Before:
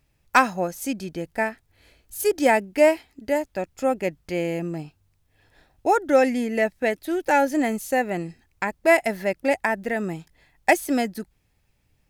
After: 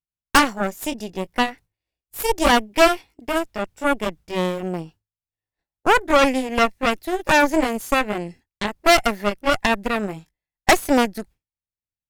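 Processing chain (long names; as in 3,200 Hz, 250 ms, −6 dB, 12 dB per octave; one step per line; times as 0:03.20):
pitch glide at a constant tempo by +2 semitones ending unshifted
harmonic generator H 8 −11 dB, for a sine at −3.5 dBFS
downward expander −39 dBFS
level +1 dB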